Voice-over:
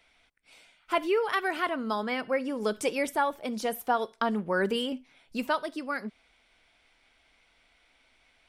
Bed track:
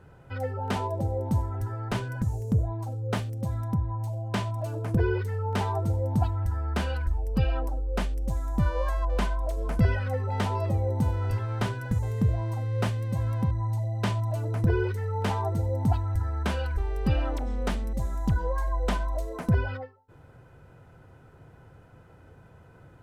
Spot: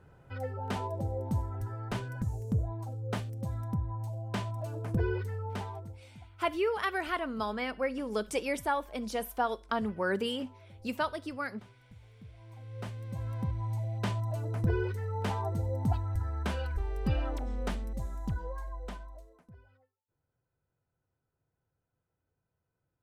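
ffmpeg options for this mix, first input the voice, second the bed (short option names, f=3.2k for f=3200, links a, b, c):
-filter_complex "[0:a]adelay=5500,volume=-3.5dB[a];[1:a]volume=16.5dB,afade=t=out:st=5.27:d=0.74:silence=0.0841395,afade=t=in:st=12.35:d=1.45:silence=0.0794328,afade=t=out:st=17.59:d=1.86:silence=0.0473151[b];[a][b]amix=inputs=2:normalize=0"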